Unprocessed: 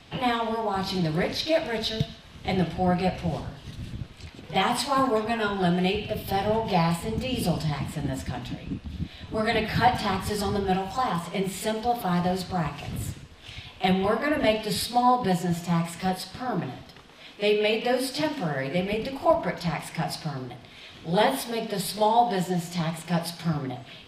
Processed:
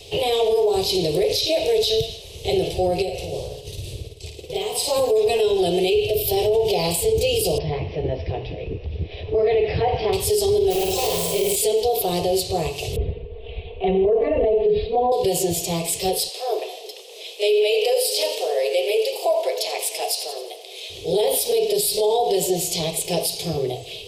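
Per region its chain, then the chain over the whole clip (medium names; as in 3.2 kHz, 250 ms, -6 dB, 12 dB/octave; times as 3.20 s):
3.02–4.88 s: expander -39 dBFS + compression 3:1, threshold -36 dBFS + flutter echo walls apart 9.3 m, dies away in 0.58 s
7.58–10.13 s: resonant high shelf 2.9 kHz -14 dB, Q 1.5 + upward compressor, threshold -32 dBFS + brick-wall FIR low-pass 5.9 kHz
10.70–11.56 s: flutter echo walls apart 9.1 m, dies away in 1.1 s + hard clipper -25 dBFS + modulation noise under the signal 21 dB
12.96–15.12 s: Gaussian low-pass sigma 4.1 samples + bass shelf 180 Hz +6 dB + comb 4.4 ms, depth 91%
16.29–20.90 s: high-pass 490 Hz 24 dB/octave + two-band feedback delay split 520 Hz, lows 320 ms, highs 87 ms, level -15 dB
whole clip: FFT filter 100 Hz 0 dB, 250 Hz -20 dB, 420 Hz +12 dB, 1.5 kHz -25 dB, 2.6 kHz +1 dB, 11 kHz +11 dB; peak limiter -20.5 dBFS; trim +8.5 dB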